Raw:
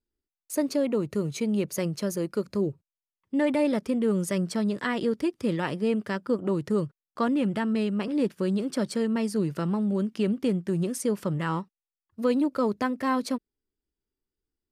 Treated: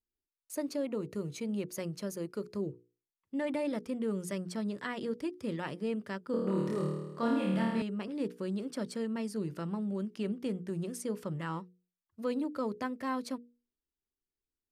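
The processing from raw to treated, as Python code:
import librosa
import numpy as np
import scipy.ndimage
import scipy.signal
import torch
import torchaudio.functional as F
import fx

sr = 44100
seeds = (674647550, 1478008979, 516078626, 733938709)

y = fx.hum_notches(x, sr, base_hz=60, count=8)
y = fx.room_flutter(y, sr, wall_m=4.5, rt60_s=1.1, at=(6.31, 7.82))
y = y * 10.0 ** (-8.5 / 20.0)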